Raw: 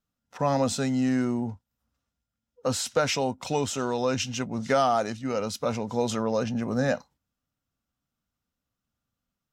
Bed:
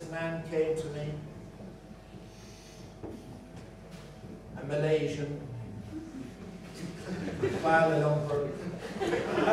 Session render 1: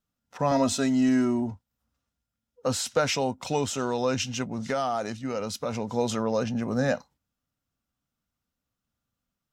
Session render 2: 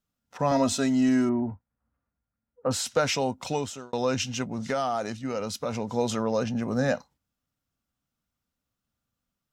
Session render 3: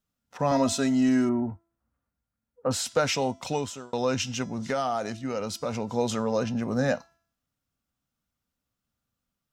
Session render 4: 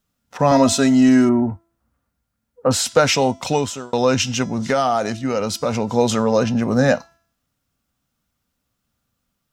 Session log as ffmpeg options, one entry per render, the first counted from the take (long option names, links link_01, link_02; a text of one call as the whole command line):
ffmpeg -i in.wav -filter_complex "[0:a]asettb=1/sr,asplit=3[link_01][link_02][link_03];[link_01]atrim=end=0.514[link_04];[link_02]atrim=start=0.51:end=1.51,asetpts=PTS-STARTPTS,afade=type=in:duration=0.004:curve=qsin,afade=type=out:start_time=0.996:duration=0.004:curve=qsin,aecho=1:1:3.1:0.74,atrim=end_sample=44100[link_05];[link_03]atrim=start=1.506[link_06];[link_04][link_05]acrossfade=duration=0.004:curve1=hsin:curve2=qsin[link_07];[link_07][link_06]acrossfade=duration=0.004:curve1=qsin:curve2=hsin,asettb=1/sr,asplit=3[link_08][link_09][link_10];[link_08]atrim=end=4.454[link_11];[link_09]atrim=start=4.45:end=5.77,asetpts=PTS-STARTPTS,afade=type=in:duration=0.004:curve=qsin,afade=type=out:start_time=1.316:duration=0.004:curve=qsin,acompressor=threshold=-27dB:ratio=2:attack=3.2:release=140:knee=1:detection=peak[link_12];[link_10]atrim=start=5.766[link_13];[link_11][link_12]acrossfade=duration=0.004:curve1=hsin:curve2=qsin[link_14];[link_14][link_13]acrossfade=duration=0.004:curve1=qsin:curve2=hsin" out.wav
ffmpeg -i in.wav -filter_complex "[0:a]asettb=1/sr,asplit=3[link_01][link_02][link_03];[link_01]atrim=end=1.294[link_04];[link_02]atrim=start=1.29:end=2.71,asetpts=PTS-STARTPTS,afade=type=in:duration=0.004:curve=qsin,afade=type=out:start_time=1.416:duration=0.004:curve=qsin,lowpass=frequency=2000:width=0.5412,lowpass=frequency=2000:width=1.3066[link_05];[link_03]atrim=start=2.706[link_06];[link_04][link_05]acrossfade=duration=0.004:curve1=hsin:curve2=qsin[link_07];[link_07][link_06]acrossfade=duration=0.004:curve1=qsin:curve2=hsin,asplit=2[link_08][link_09];[link_08]atrim=end=3.93,asetpts=PTS-STARTPTS,afade=type=out:start_time=3.47:duration=0.46[link_10];[link_09]atrim=start=3.93,asetpts=PTS-STARTPTS,afade=type=in:duration=0.004:curve=hsin[link_11];[link_10][link_11]concat=n=2:v=0:a=1" out.wav
ffmpeg -i in.wav -af "bandreject=frequency=335.4:width_type=h:width=4,bandreject=frequency=670.8:width_type=h:width=4,bandreject=frequency=1006.2:width_type=h:width=4,bandreject=frequency=1341.6:width_type=h:width=4,bandreject=frequency=1677:width_type=h:width=4,bandreject=frequency=2012.4:width_type=h:width=4,bandreject=frequency=2347.8:width_type=h:width=4,bandreject=frequency=2683.2:width_type=h:width=4,bandreject=frequency=3018.6:width_type=h:width=4,bandreject=frequency=3354:width_type=h:width=4,bandreject=frequency=3689.4:width_type=h:width=4,bandreject=frequency=4024.8:width_type=h:width=4,bandreject=frequency=4360.2:width_type=h:width=4,bandreject=frequency=4695.6:width_type=h:width=4,bandreject=frequency=5031:width_type=h:width=4,bandreject=frequency=5366.4:width_type=h:width=4,bandreject=frequency=5701.8:width_type=h:width=4,bandreject=frequency=6037.2:width_type=h:width=4,bandreject=frequency=6372.6:width_type=h:width=4,bandreject=frequency=6708:width_type=h:width=4,bandreject=frequency=7043.4:width_type=h:width=4,bandreject=frequency=7378.8:width_type=h:width=4,bandreject=frequency=7714.2:width_type=h:width=4,bandreject=frequency=8049.6:width_type=h:width=4,bandreject=frequency=8385:width_type=h:width=4,bandreject=frequency=8720.4:width_type=h:width=4,bandreject=frequency=9055.8:width_type=h:width=4,bandreject=frequency=9391.2:width_type=h:width=4,bandreject=frequency=9726.6:width_type=h:width=4,bandreject=frequency=10062:width_type=h:width=4" out.wav
ffmpeg -i in.wav -af "volume=9.5dB" out.wav